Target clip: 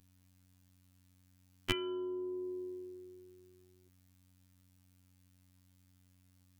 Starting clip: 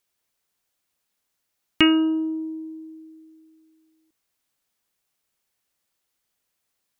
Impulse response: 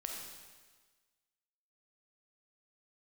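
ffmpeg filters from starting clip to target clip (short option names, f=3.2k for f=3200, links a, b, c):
-filter_complex "[0:a]acrossover=split=110[a][b];[b]acompressor=threshold=-35dB:ratio=6[c];[a][c]amix=inputs=2:normalize=0,aeval=exprs='val(0)+0.000501*(sin(2*PI*50*n/s)+sin(2*PI*2*50*n/s)/2+sin(2*PI*3*50*n/s)/3+sin(2*PI*4*50*n/s)/4+sin(2*PI*5*50*n/s)/5)':c=same,afftfilt=real='hypot(re,im)*cos(PI*b)':imag='0':win_size=2048:overlap=0.75,asetrate=46746,aresample=44100,volume=5.5dB"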